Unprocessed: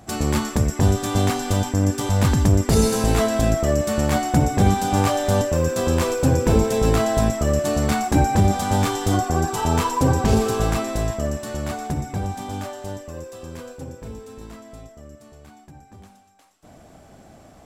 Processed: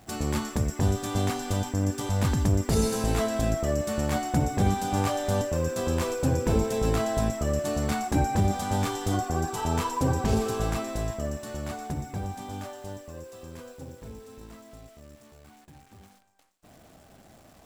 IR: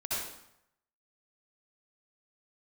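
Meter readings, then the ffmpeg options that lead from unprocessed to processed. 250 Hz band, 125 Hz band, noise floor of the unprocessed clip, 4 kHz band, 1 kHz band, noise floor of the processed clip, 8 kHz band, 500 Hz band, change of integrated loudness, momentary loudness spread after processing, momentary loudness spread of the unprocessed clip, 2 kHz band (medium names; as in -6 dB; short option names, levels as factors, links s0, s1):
-7.0 dB, -7.0 dB, -49 dBFS, -7.0 dB, -7.0 dB, -55 dBFS, -7.0 dB, -7.0 dB, -7.0 dB, 17 LU, 16 LU, -7.0 dB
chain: -af "acrusher=bits=9:dc=4:mix=0:aa=0.000001,volume=0.447"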